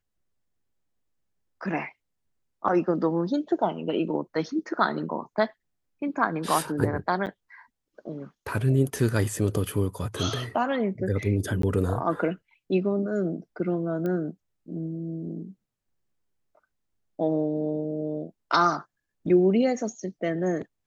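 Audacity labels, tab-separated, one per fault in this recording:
7.260000	7.270000	gap 8.8 ms
11.620000	11.630000	gap 13 ms
14.060000	14.060000	pop -20 dBFS

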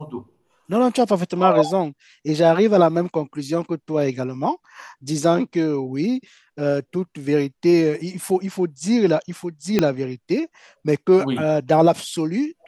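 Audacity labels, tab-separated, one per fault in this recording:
9.790000	9.790000	pop -4 dBFS

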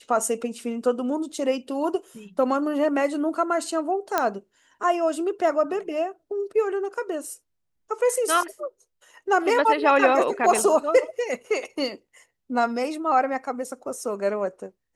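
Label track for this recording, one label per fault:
4.180000	4.180000	pop -7 dBFS
10.590000	10.590000	gap 2 ms

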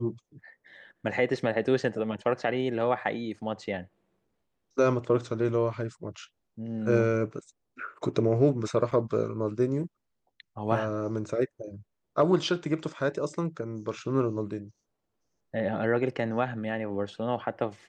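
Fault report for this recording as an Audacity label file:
8.910000	8.920000	gap 6.3 ms

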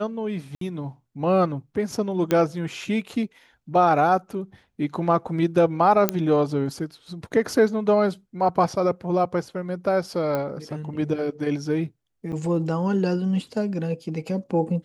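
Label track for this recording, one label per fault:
0.550000	0.610000	gap 63 ms
2.310000	2.310000	pop -9 dBFS
6.090000	6.090000	pop -4 dBFS
10.350000	10.350000	pop -14 dBFS
12.320000	12.330000	gap 7.8 ms

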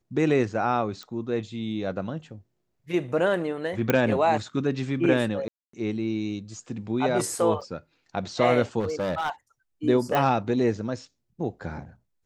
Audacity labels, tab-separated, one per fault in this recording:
1.030000	1.030000	pop
3.900000	3.900000	pop -8 dBFS
5.480000	5.730000	gap 0.254 s
7.610000	7.620000	gap 5.3 ms
8.790000	9.300000	clipped -23 dBFS
10.150000	10.150000	pop -12 dBFS

